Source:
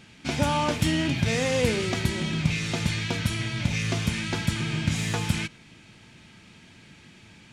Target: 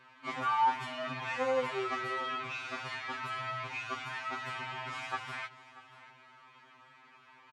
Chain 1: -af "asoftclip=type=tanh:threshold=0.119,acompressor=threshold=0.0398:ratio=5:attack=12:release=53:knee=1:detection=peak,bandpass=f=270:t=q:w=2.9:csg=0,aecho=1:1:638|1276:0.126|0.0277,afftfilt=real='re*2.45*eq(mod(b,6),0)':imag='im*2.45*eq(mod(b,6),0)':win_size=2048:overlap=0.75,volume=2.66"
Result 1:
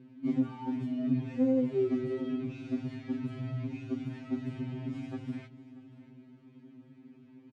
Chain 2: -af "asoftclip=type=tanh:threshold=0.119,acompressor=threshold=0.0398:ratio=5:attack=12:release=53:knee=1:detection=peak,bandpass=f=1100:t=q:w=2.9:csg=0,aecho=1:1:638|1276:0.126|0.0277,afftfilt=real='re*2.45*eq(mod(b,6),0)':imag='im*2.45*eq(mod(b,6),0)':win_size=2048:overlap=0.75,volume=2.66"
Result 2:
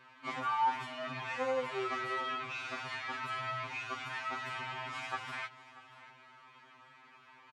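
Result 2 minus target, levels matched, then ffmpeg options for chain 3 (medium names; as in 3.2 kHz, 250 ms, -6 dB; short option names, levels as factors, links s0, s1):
compression: peak gain reduction +6 dB
-af "asoftclip=type=tanh:threshold=0.119,bandpass=f=1100:t=q:w=2.9:csg=0,aecho=1:1:638|1276:0.126|0.0277,afftfilt=real='re*2.45*eq(mod(b,6),0)':imag='im*2.45*eq(mod(b,6),0)':win_size=2048:overlap=0.75,volume=2.66"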